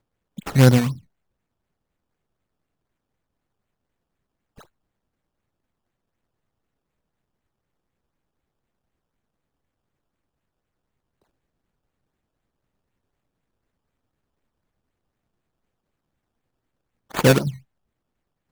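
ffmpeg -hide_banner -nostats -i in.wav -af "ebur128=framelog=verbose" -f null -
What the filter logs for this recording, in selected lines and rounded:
Integrated loudness:
  I:         -18.5 LUFS
  Threshold: -31.3 LUFS
Loudness range:
  LRA:        17.1 LU
  Threshold: -49.9 LUFS
  LRA low:   -41.1 LUFS
  LRA high:  -24.0 LUFS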